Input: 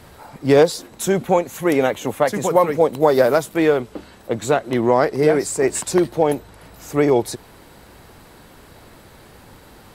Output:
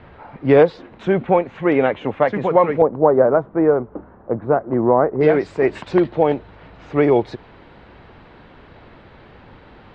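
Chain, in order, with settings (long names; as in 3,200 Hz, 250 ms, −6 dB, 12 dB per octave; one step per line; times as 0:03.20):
low-pass filter 2,800 Hz 24 dB per octave, from 0:02.82 1,300 Hz, from 0:05.21 3,300 Hz
level +1 dB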